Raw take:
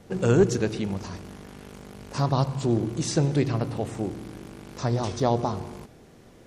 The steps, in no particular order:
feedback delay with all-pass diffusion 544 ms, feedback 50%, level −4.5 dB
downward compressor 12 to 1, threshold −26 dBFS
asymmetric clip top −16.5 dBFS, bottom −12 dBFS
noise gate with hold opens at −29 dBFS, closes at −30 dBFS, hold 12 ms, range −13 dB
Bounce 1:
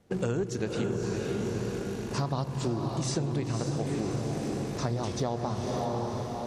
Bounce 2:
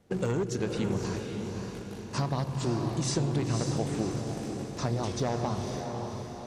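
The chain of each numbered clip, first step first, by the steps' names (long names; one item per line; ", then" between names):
feedback delay with all-pass diffusion, then noise gate with hold, then downward compressor, then asymmetric clip
noise gate with hold, then asymmetric clip, then downward compressor, then feedback delay with all-pass diffusion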